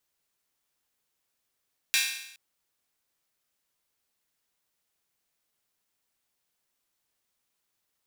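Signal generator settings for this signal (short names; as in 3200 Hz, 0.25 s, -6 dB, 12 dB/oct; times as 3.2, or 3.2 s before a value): open hi-hat length 0.42 s, high-pass 2200 Hz, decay 0.79 s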